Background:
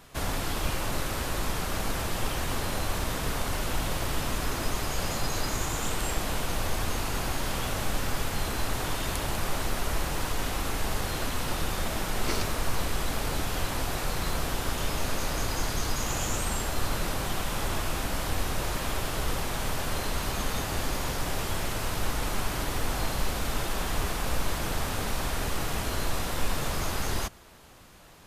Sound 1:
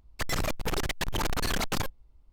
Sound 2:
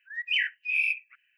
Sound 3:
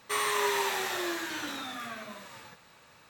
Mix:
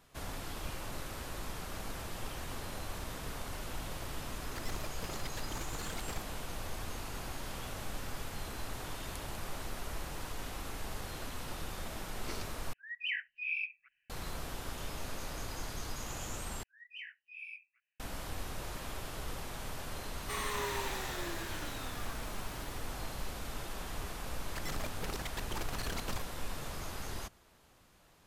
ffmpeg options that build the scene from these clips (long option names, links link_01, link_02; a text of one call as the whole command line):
ffmpeg -i bed.wav -i cue0.wav -i cue1.wav -i cue2.wav -filter_complex "[1:a]asplit=2[link_01][link_02];[2:a]asplit=2[link_03][link_04];[0:a]volume=-11.5dB[link_05];[link_03]aemphasis=mode=reproduction:type=bsi[link_06];[link_04]flanger=delay=17:depth=4.2:speed=2.5[link_07];[link_05]asplit=3[link_08][link_09][link_10];[link_08]atrim=end=12.734[link_11];[link_06]atrim=end=1.37,asetpts=PTS-STARTPTS,volume=-8dB[link_12];[link_09]atrim=start=14.096:end=16.634[link_13];[link_07]atrim=end=1.37,asetpts=PTS-STARTPTS,volume=-18dB[link_14];[link_10]atrim=start=17.996[link_15];[link_01]atrim=end=2.32,asetpts=PTS-STARTPTS,volume=-15dB,afade=type=in:duration=0.004:curve=hsin,afade=type=out:start_time=2.316:duration=0.004:curve=hsin,adelay=4360[link_16];[3:a]atrim=end=3.09,asetpts=PTS-STARTPTS,volume=-9dB,afade=type=in:duration=0.004:curve=hsin,afade=type=out:start_time=3.086:duration=0.004:curve=hsin,adelay=20190[link_17];[link_02]atrim=end=2.32,asetpts=PTS-STARTPTS,volume=-11dB,afade=type=in:duration=0.004:curve=hsin,afade=type=out:start_time=2.316:duration=0.004:curve=hsin,adelay=24360[link_18];[link_11][link_12]acrossfade=duration=0.004:curve1=hsin:curve2=hsin[link_19];[link_19][link_13]acrossfade=duration=0.004:curve1=hsin:curve2=hsin[link_20];[link_20][link_14]acrossfade=duration=0.004:curve1=hsin:curve2=hsin[link_21];[link_21][link_15]acrossfade=duration=0.004:curve1=hsin:curve2=hsin[link_22];[link_22][link_16][link_17][link_18]amix=inputs=4:normalize=0" out.wav